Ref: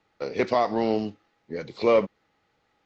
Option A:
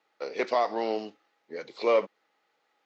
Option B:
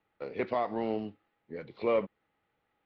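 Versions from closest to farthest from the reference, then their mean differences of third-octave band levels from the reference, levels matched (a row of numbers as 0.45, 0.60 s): B, A; 1.5, 4.0 dB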